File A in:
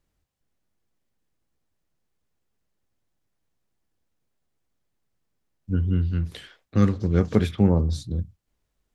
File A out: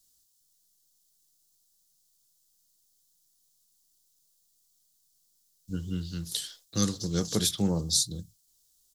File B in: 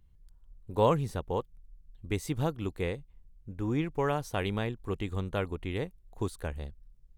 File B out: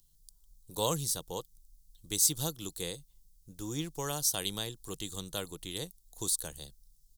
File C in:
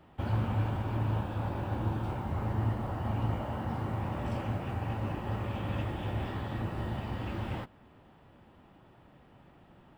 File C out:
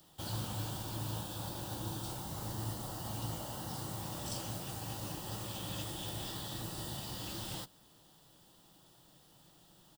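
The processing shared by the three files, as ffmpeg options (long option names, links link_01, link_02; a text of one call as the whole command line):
ffmpeg -i in.wav -filter_complex "[0:a]acrossover=split=380[link_01][link_02];[link_01]aecho=1:1:6.2:0.54[link_03];[link_02]aexciter=amount=14.6:drive=6.3:freq=3600[link_04];[link_03][link_04]amix=inputs=2:normalize=0,lowshelf=frequency=390:gain=-2.5,volume=-7dB" out.wav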